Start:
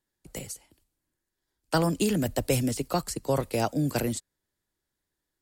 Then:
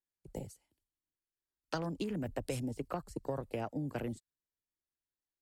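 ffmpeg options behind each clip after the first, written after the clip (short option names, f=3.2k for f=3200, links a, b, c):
-af "afwtdn=0.0112,acompressor=threshold=-33dB:ratio=6,volume=-1.5dB"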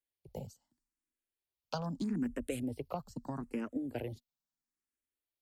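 -filter_complex "[0:a]equalizer=f=240:t=o:w=0.26:g=9.5,asplit=2[a][b];[b]afreqshift=0.78[c];[a][c]amix=inputs=2:normalize=1,volume=1dB"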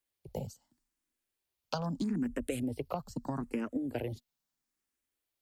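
-af "acompressor=threshold=-39dB:ratio=2,volume=6dB"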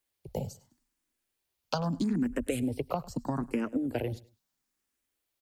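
-af "aecho=1:1:102|204:0.0891|0.0232,volume=4dB"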